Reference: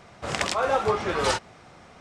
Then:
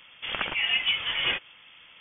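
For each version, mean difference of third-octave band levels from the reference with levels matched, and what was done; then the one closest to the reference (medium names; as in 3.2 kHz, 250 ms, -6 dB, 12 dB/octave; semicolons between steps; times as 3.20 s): 12.5 dB: frequency inversion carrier 3.4 kHz; trim -2.5 dB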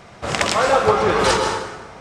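4.0 dB: plate-style reverb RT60 1.3 s, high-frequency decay 0.65×, pre-delay 110 ms, DRR 3.5 dB; trim +6.5 dB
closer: second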